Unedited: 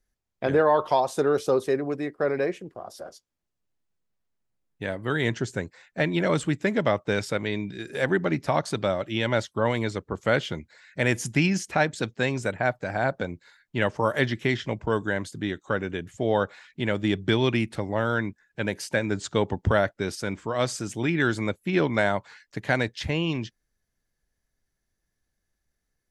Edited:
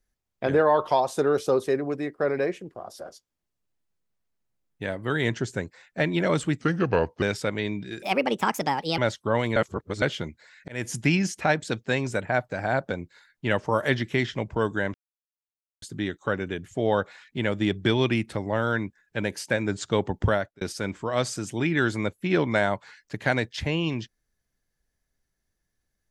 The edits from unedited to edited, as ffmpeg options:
-filter_complex "[0:a]asplit=10[a][b][c][d][e][f][g][h][i][j];[a]atrim=end=6.614[k];[b]atrim=start=6.61:end=7.1,asetpts=PTS-STARTPTS,asetrate=35280,aresample=44100,atrim=end_sample=27011,asetpts=PTS-STARTPTS[l];[c]atrim=start=7.096:end=7.904[m];[d]atrim=start=7.9:end=9.29,asetpts=PTS-STARTPTS,asetrate=63945,aresample=44100,atrim=end_sample=42275,asetpts=PTS-STARTPTS[n];[e]atrim=start=9.286:end=9.872[o];[f]atrim=start=9.868:end=10.332,asetpts=PTS-STARTPTS,areverse[p];[g]atrim=start=10.328:end=10.99,asetpts=PTS-STARTPTS,afade=t=out:st=0.658:d=0.004:c=hsin[q];[h]atrim=start=10.99:end=15.25,asetpts=PTS-STARTPTS,afade=t=in:d=0.27,afade=t=out:st=4.256:d=0.004:c=hsin,apad=pad_dur=0.88[r];[i]atrim=start=15.25:end=20.04,asetpts=PTS-STARTPTS,afade=t=in:d=0.004:c=hsin,afade=t=out:st=4.44:d=0.35[s];[j]atrim=start=20.04,asetpts=PTS-STARTPTS,afade=t=in:d=0.004:c=hsin[t];[k][l]acrossfade=d=0.004:c1=hsin:c2=hsin[u];[u][m]acrossfade=d=0.004:c1=hsin:c2=hsin[v];[v][n]acrossfade=d=0.004:c1=hsin:c2=hsin[w];[w][o]acrossfade=d=0.004:c1=hsin:c2=hsin[x];[x][p]acrossfade=d=0.004:c1=hsin:c2=hsin[y];[q][r][s][t]concat=n=4:v=0:a=1[z];[y][z]acrossfade=d=0.004:c1=hsin:c2=hsin"

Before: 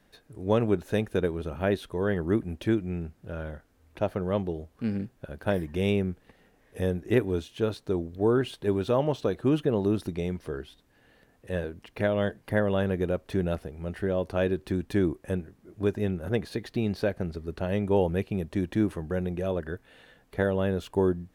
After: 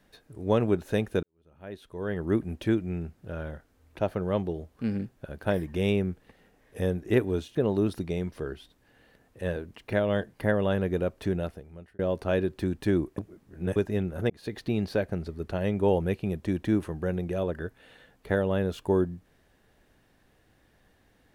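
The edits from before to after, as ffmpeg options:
-filter_complex "[0:a]asplit=7[a][b][c][d][e][f][g];[a]atrim=end=1.23,asetpts=PTS-STARTPTS,afade=t=out:st=1.226:d=0.004:c=hsin[h];[b]atrim=start=1.23:end=7.552,asetpts=PTS-STARTPTS,afade=t=in:d=1.12:c=qua[i];[c]atrim=start=9.628:end=14.07,asetpts=PTS-STARTPTS,afade=t=out:st=3.692:d=0.75[j];[d]atrim=start=14.07:end=15.262,asetpts=PTS-STARTPTS,afade=t=in:d=0.004:c=hsin[k];[e]atrim=start=15.258:end=15.842,asetpts=PTS-STARTPTS,areverse[l];[f]atrim=start=15.838:end=16.38,asetpts=PTS-STARTPTS,afade=t=out:st=0.538:d=0.004:c=hsin[m];[g]atrim=start=16.38,asetpts=PTS-STARTPTS,afade=t=in:d=0.25[n];[h][i]concat=n=2:v=0:a=1[o];[j][k]concat=n=2:v=0:a=1[p];[o][p]acrossfade=d=0.004:c1=hsin:c2=hsin[q];[q][l]acrossfade=d=0.004:c1=hsin:c2=hsin[r];[m][n]concat=n=2:v=0:a=1[s];[r][s]acrossfade=d=0.004:c1=hsin:c2=hsin"

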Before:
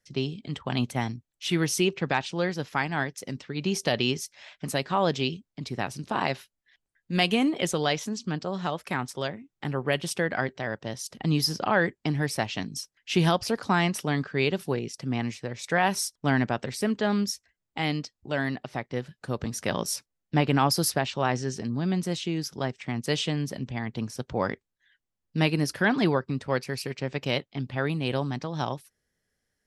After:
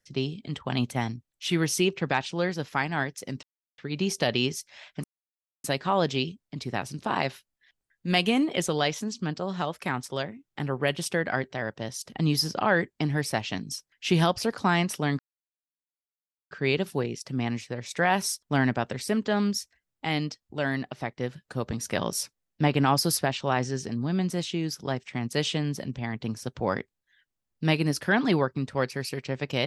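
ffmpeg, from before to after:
-filter_complex "[0:a]asplit=4[a][b][c][d];[a]atrim=end=3.43,asetpts=PTS-STARTPTS,afade=t=out:st=3.426:d=0.004:c=hsin,apad=pad_dur=0.35[e];[b]atrim=start=3.43:end=4.69,asetpts=PTS-STARTPTS,afade=t=in:d=0.004:c=hsin,afade=t=out:st=1.256:d=0.004:c=hsin,apad=pad_dur=0.6[f];[c]atrim=start=4.69:end=14.24,asetpts=PTS-STARTPTS,afade=t=in:d=0.004:c=hsin,afade=t=out:st=9.546:d=0.004:c=hsin,apad=pad_dur=1.32[g];[d]atrim=start=14.24,asetpts=PTS-STARTPTS,afade=t=in:d=0.004:c=hsin[h];[e][f][g][h]concat=n=4:v=0:a=1"

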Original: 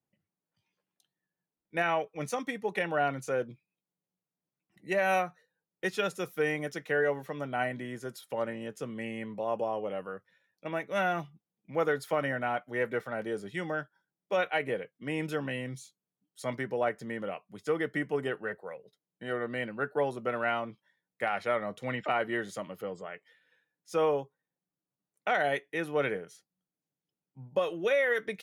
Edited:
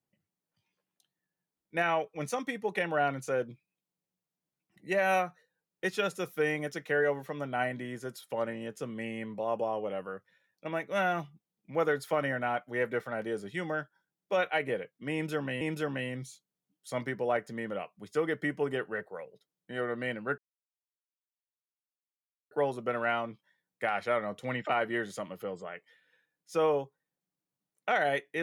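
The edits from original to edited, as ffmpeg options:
-filter_complex "[0:a]asplit=3[a][b][c];[a]atrim=end=15.612[d];[b]atrim=start=15.128:end=19.9,asetpts=PTS-STARTPTS,afade=t=out:st=4.768:d=0.004:c=hsin,apad=pad_dur=2.13[e];[c]atrim=start=19.9,asetpts=PTS-STARTPTS,afade=t=in:d=0.004:c=hsin[f];[e][f]concat=n=2:v=0:a=1[g];[d][g]acrossfade=d=0.004:c1=hsin:c2=hsin"

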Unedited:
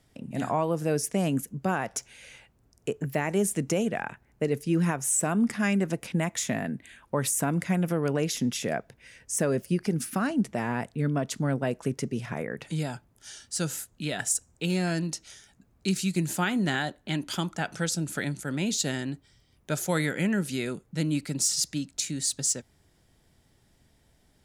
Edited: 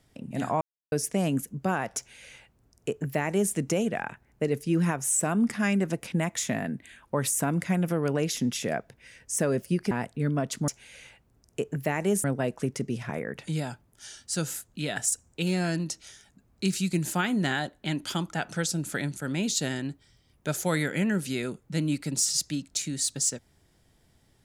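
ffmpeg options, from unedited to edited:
-filter_complex "[0:a]asplit=6[a][b][c][d][e][f];[a]atrim=end=0.61,asetpts=PTS-STARTPTS,afade=t=out:st=0.606:d=0.004:c=hsin[g];[b]atrim=start=0.61:end=0.92,asetpts=PTS-STARTPTS,volume=0[h];[c]atrim=start=0.92:end=9.912,asetpts=PTS-STARTPTS,afade=t=in:d=0.004:c=hsin[i];[d]atrim=start=10.698:end=11.472[j];[e]atrim=start=1.968:end=3.532[k];[f]atrim=start=11.468[l];[g][h][i]concat=n=3:v=0:a=1[m];[m][j]acrossfade=d=0.004:c1=hsin:c2=hsin[n];[n][k]acrossfade=d=0.004:c1=hsin:c2=hsin[o];[o][l]acrossfade=d=0.004:c1=hsin:c2=hsin"

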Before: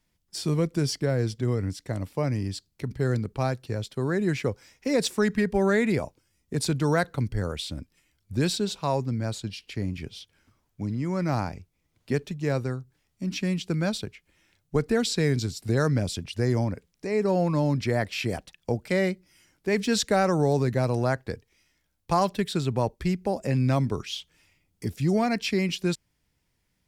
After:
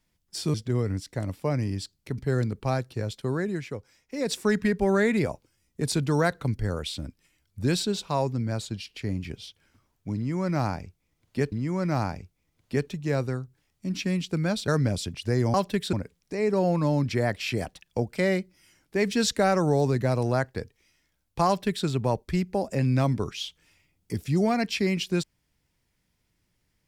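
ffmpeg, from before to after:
-filter_complex "[0:a]asplit=8[a][b][c][d][e][f][g][h];[a]atrim=end=0.542[i];[b]atrim=start=1.268:end=4.35,asetpts=PTS-STARTPTS,afade=t=out:st=2.742:d=0.34:silence=0.398107[j];[c]atrim=start=4.35:end=4.86,asetpts=PTS-STARTPTS,volume=-8dB[k];[d]atrim=start=4.86:end=12.252,asetpts=PTS-STARTPTS,afade=t=in:d=0.34:silence=0.398107[l];[e]atrim=start=10.888:end=14.052[m];[f]atrim=start=15.788:end=16.652[n];[g]atrim=start=22.188:end=22.582[o];[h]atrim=start=16.648[p];[j][k][l]concat=n=3:v=0:a=1[q];[i][q]acrossfade=d=0.004:c1=hsin:c2=hsin[r];[r][m]acrossfade=d=0.004:c1=hsin:c2=hsin[s];[s][n]acrossfade=d=0.004:c1=hsin:c2=hsin[t];[t][o]acrossfade=d=0.004:c1=hsin:c2=hsin[u];[u][p]acrossfade=d=0.004:c1=hsin:c2=hsin"

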